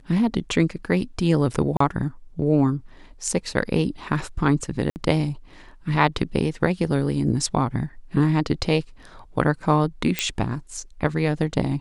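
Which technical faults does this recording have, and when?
0:01.77–0:01.80: drop-out 34 ms
0:04.90–0:04.96: drop-out 59 ms
0:10.19: click −5 dBFS

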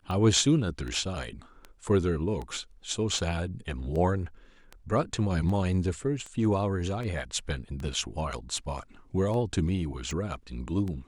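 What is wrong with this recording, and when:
scratch tick 78 rpm −25 dBFS

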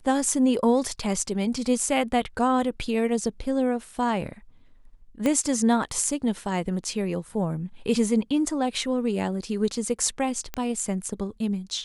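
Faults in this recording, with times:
0:05.26: click −12 dBFS
0:10.54: click −15 dBFS

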